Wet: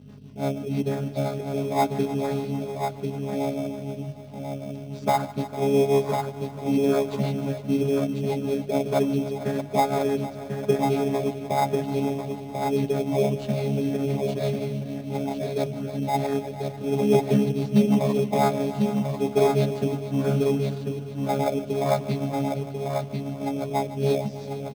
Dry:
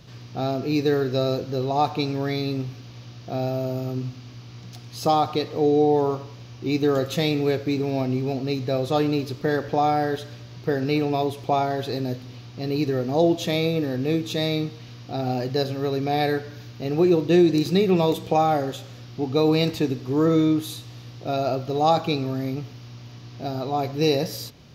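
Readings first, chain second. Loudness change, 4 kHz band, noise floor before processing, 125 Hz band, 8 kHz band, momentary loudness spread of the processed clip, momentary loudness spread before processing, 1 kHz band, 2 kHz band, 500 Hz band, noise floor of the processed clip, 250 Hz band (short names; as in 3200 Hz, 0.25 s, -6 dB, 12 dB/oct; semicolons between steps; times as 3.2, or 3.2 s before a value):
-2.0 dB, -8.0 dB, -43 dBFS, -0.5 dB, +0.5 dB, 9 LU, 16 LU, -2.5 dB, -4.0 dB, -1.0 dB, -38 dBFS, -1.5 dB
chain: chord vocoder bare fifth, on C#3; notches 60/120/180/240/300/360/420 Hz; rotary speaker horn 6 Hz; reverb removal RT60 0.79 s; dynamic EQ 900 Hz, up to +5 dB, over -41 dBFS, Q 1.4; on a send: echo 1.043 s -5 dB; on the sum: hum 50 Hz, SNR 15 dB; HPF 160 Hz 12 dB/oct; multi-head echo 0.151 s, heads all three, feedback 58%, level -17.5 dB; in parallel at -5.5 dB: sample-rate reducer 2900 Hz, jitter 0%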